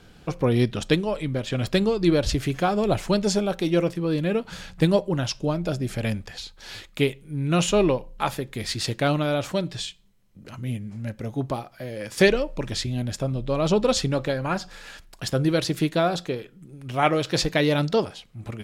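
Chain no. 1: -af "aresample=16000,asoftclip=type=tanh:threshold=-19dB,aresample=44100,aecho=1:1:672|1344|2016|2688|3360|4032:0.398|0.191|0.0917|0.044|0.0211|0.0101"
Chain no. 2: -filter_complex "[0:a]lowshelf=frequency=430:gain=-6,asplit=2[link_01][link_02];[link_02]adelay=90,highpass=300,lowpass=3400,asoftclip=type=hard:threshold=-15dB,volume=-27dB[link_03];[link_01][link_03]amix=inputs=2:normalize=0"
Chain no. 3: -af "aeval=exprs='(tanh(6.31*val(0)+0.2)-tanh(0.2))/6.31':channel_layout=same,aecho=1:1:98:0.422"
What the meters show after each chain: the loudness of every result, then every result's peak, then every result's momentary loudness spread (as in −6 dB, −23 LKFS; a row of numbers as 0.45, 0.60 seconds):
−27.5, −27.5, −26.0 LKFS; −14.5, −6.0, −11.5 dBFS; 8, 14, 12 LU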